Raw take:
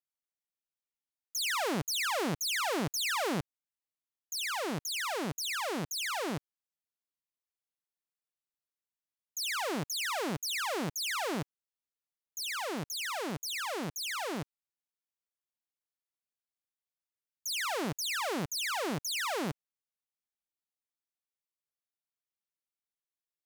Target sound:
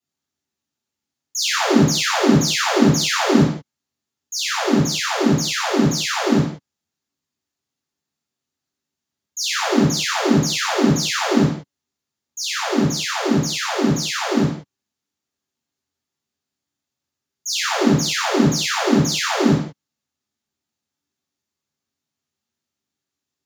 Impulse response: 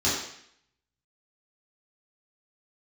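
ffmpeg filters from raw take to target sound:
-filter_complex "[0:a]equalizer=frequency=180:width_type=o:width=1.2:gain=8.5,asplit=2[link_01][link_02];[link_02]asoftclip=type=tanh:threshold=-30.5dB,volume=-9dB[link_03];[link_01][link_03]amix=inputs=2:normalize=0[link_04];[1:a]atrim=start_sample=2205,afade=type=out:start_time=0.26:duration=0.01,atrim=end_sample=11907[link_05];[link_04][link_05]afir=irnorm=-1:irlink=0,volume=-3dB"

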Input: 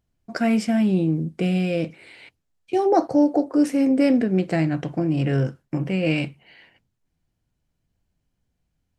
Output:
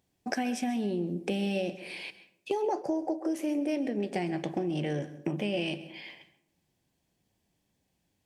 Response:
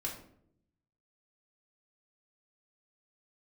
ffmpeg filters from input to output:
-filter_complex "[0:a]highpass=frequency=290:poles=1,equalizer=frequency=1200:width_type=o:width=0.58:gain=-7.5,acompressor=threshold=-35dB:ratio=6,asplit=2[link_01][link_02];[1:a]atrim=start_sample=2205,adelay=143[link_03];[link_02][link_03]afir=irnorm=-1:irlink=0,volume=-15.5dB[link_04];[link_01][link_04]amix=inputs=2:normalize=0,asetrate=48000,aresample=44100,volume=6dB"

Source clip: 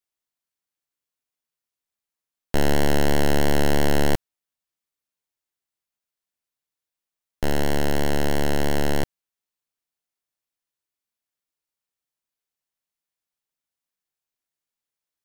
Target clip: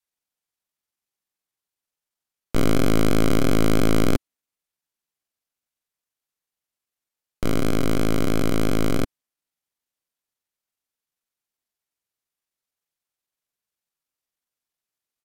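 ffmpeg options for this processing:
ffmpeg -i in.wav -af "adynamicequalizer=threshold=0.0112:dfrequency=360:dqfactor=2.3:tfrequency=360:tqfactor=2.3:attack=5:release=100:ratio=0.375:range=2.5:mode=boostabove:tftype=bell,asetrate=33038,aresample=44100,atempo=1.33484" out.wav

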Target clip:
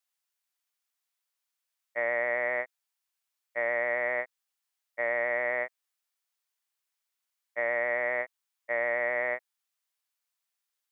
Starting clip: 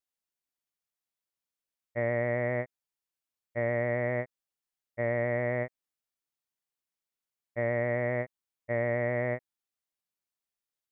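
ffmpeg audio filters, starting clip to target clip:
ffmpeg -i in.wav -af "highpass=850,volume=6.5dB" out.wav

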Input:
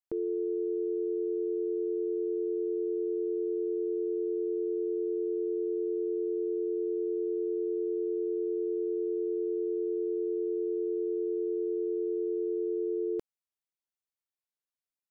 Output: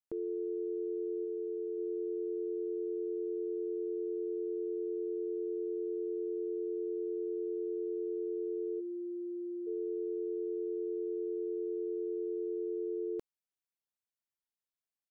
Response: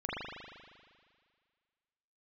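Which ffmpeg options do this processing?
-filter_complex "[0:a]asplit=3[link_01][link_02][link_03];[link_01]afade=type=out:start_time=1.24:duration=0.02[link_04];[link_02]asplit=2[link_05][link_06];[link_06]adelay=13,volume=-11dB[link_07];[link_05][link_07]amix=inputs=2:normalize=0,afade=type=in:start_time=1.24:duration=0.02,afade=type=out:start_time=1.77:duration=0.02[link_08];[link_03]afade=type=in:start_time=1.77:duration=0.02[link_09];[link_04][link_08][link_09]amix=inputs=3:normalize=0,asplit=3[link_10][link_11][link_12];[link_10]afade=type=out:start_time=8.79:duration=0.02[link_13];[link_11]bandreject=frequency=440:width=12,afade=type=in:start_time=8.79:duration=0.02,afade=type=out:start_time=9.66:duration=0.02[link_14];[link_12]afade=type=in:start_time=9.66:duration=0.02[link_15];[link_13][link_14][link_15]amix=inputs=3:normalize=0,volume=-5dB"

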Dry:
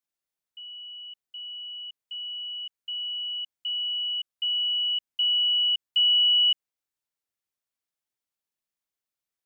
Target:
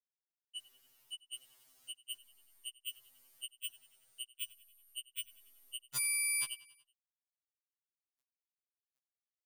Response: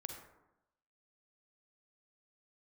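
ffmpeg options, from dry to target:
-filter_complex "[0:a]highshelf=frequency=2800:gain=-10,alimiter=level_in=4dB:limit=-24dB:level=0:latency=1,volume=-4dB,acompressor=threshold=-40dB:ratio=16,asettb=1/sr,asplit=3[link_01][link_02][link_03];[link_01]atrim=end=5.904[link_04];[link_02]atrim=start=5.9:end=6.44,asetpts=PTS-STARTPTS,afade=type=in:duration=0.004:curve=qsin,afade=type=out:start_time=0.536:duration=0.004:curve=qsin,aeval=exprs='val(0)*sin(2*PI*620*n/s)':channel_layout=same[link_05];[link_03]atrim=start=6.436[link_06];[link_04][link_05]acrossfade=duration=0.004:curve1=hsin:curve2=qsin[link_07];[link_07][link_06]acrossfade=duration=0.004:curve1=qsin:curve2=hsin,aeval=exprs='0.0224*sin(PI/2*5.01*val(0)/0.0224)':channel_layout=same,acrusher=bits=10:mix=0:aa=0.000001,aecho=1:1:94|188|282|376:0.1|0.056|0.0314|0.0176,afftfilt=real='re*2.45*eq(mod(b,6),0)':imag='im*2.45*eq(mod(b,6),0)':win_size=2048:overlap=0.75,volume=5dB"

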